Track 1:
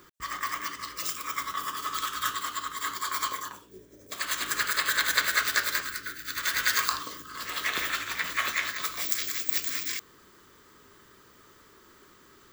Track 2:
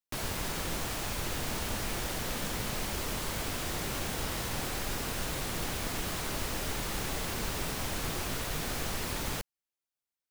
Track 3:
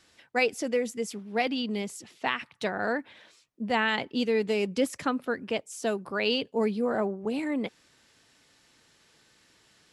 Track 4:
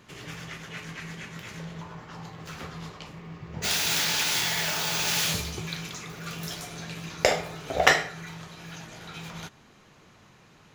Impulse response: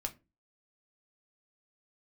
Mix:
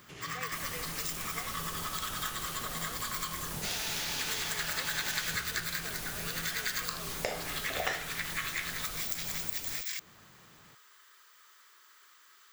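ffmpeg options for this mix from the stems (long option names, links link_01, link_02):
-filter_complex "[0:a]highpass=1300,volume=-0.5dB[link_01];[1:a]aemphasis=mode=production:type=cd,adelay=400,volume=-7.5dB[link_02];[2:a]highpass=350,volume=-18dB[link_03];[3:a]volume=-4.5dB[link_04];[link_01][link_02][link_03][link_04]amix=inputs=4:normalize=0,acompressor=threshold=-34dB:ratio=2.5"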